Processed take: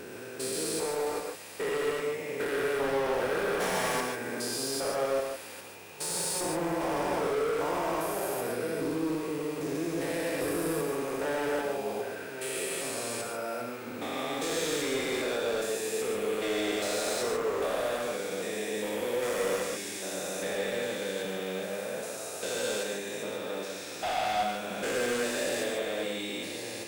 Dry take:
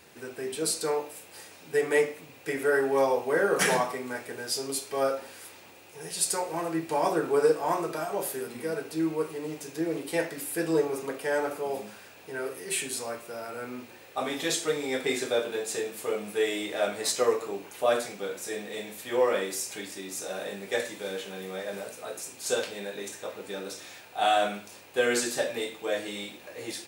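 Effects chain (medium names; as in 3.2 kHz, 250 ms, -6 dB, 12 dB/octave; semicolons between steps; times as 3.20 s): spectrogram pixelated in time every 400 ms; overload inside the chain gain 32 dB; gated-style reverb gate 170 ms rising, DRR 2.5 dB; trim +3 dB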